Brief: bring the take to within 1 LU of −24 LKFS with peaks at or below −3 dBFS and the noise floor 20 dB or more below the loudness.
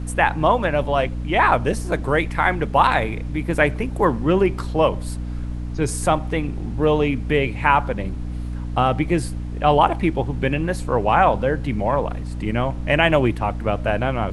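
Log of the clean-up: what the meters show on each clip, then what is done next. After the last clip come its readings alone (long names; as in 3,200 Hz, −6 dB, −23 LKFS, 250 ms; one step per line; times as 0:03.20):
mains hum 60 Hz; hum harmonics up to 300 Hz; level of the hum −25 dBFS; background noise floor −28 dBFS; target noise floor −41 dBFS; integrated loudness −20.5 LKFS; sample peak −1.5 dBFS; target loudness −24.0 LKFS
→ hum removal 60 Hz, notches 5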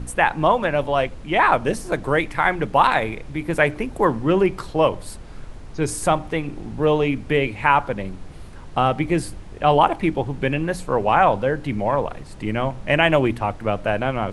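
mains hum none found; background noise floor −38 dBFS; target noise floor −41 dBFS
→ noise reduction from a noise print 6 dB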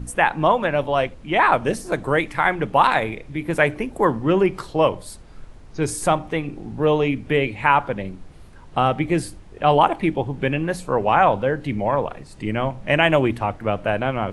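background noise floor −42 dBFS; integrated loudness −21.0 LKFS; sample peak −2.0 dBFS; target loudness −24.0 LKFS
→ level −3 dB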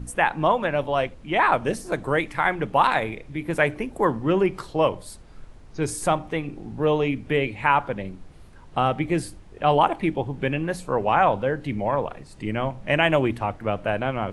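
integrated loudness −24.0 LKFS; sample peak −5.0 dBFS; background noise floor −45 dBFS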